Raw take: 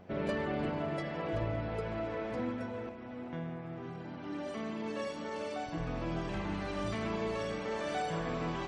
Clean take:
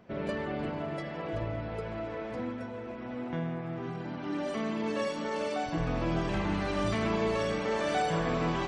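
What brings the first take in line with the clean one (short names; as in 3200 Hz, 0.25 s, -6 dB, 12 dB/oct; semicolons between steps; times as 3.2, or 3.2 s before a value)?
clip repair -25 dBFS; de-hum 91.1 Hz, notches 9; gain correction +6 dB, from 2.89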